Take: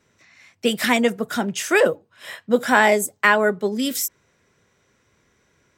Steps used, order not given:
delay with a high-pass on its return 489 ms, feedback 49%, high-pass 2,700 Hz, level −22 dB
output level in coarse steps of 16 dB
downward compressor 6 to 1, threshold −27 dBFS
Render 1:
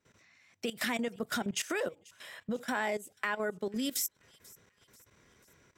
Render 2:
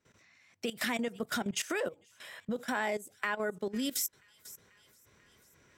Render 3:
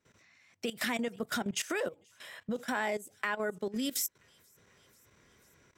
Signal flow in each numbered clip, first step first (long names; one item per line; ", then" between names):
downward compressor, then output level in coarse steps, then delay with a high-pass on its return
delay with a high-pass on its return, then downward compressor, then output level in coarse steps
downward compressor, then delay with a high-pass on its return, then output level in coarse steps